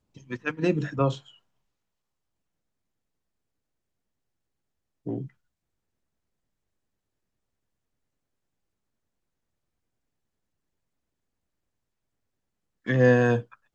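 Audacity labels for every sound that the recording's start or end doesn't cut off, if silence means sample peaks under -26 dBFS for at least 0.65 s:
5.070000	5.180000	sound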